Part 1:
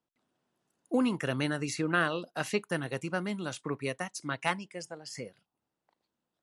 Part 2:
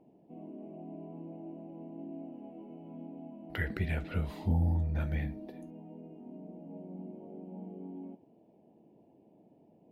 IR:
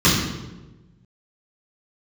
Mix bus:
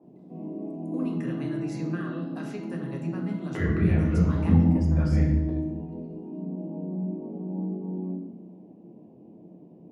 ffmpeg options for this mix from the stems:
-filter_complex "[0:a]acompressor=threshold=0.0112:ratio=3,volume=0.631,asplit=2[s0][s1];[s1]volume=0.0944[s2];[1:a]equalizer=f=660:w=0.39:g=11,volume=0.398,asplit=2[s3][s4];[s4]volume=0.141[s5];[2:a]atrim=start_sample=2205[s6];[s2][s5]amix=inputs=2:normalize=0[s7];[s7][s6]afir=irnorm=-1:irlink=0[s8];[s0][s3][s8]amix=inputs=3:normalize=0,adynamicequalizer=threshold=0.00316:dfrequency=2300:dqfactor=0.7:tfrequency=2300:tqfactor=0.7:attack=5:release=100:ratio=0.375:range=3:mode=cutabove:tftype=highshelf"

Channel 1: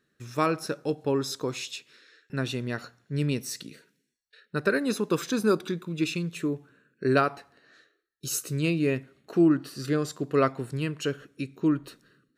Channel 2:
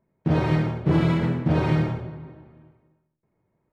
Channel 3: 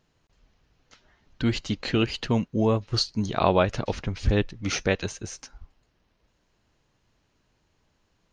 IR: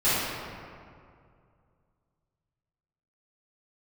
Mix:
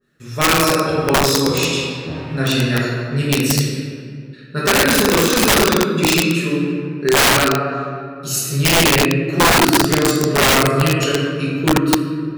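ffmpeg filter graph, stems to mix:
-filter_complex "[0:a]adynamicequalizer=threshold=0.00891:dfrequency=1500:dqfactor=0.7:tfrequency=1500:tqfactor=0.7:attack=5:release=100:ratio=0.375:range=3.5:mode=boostabove:tftype=highshelf,volume=1.06,asplit=2[s0][s1];[s1]volume=0.531[s2];[1:a]adelay=600,volume=0.422[s3];[3:a]atrim=start_sample=2205[s4];[s2][s4]afir=irnorm=-1:irlink=0[s5];[s0][s3][s5]amix=inputs=3:normalize=0,aeval=exprs='(mod(2.24*val(0)+1,2)-1)/2.24':c=same"

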